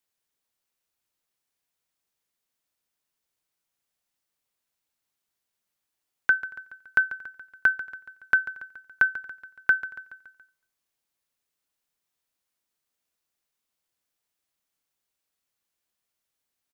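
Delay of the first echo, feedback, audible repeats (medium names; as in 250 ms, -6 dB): 141 ms, 55%, 4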